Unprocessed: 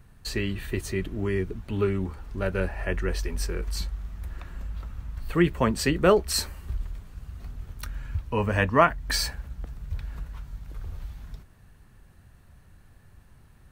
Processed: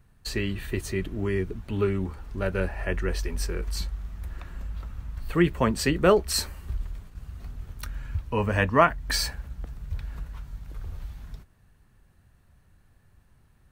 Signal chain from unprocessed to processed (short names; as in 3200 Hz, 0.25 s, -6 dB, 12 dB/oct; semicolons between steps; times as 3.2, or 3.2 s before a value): gate -43 dBFS, range -6 dB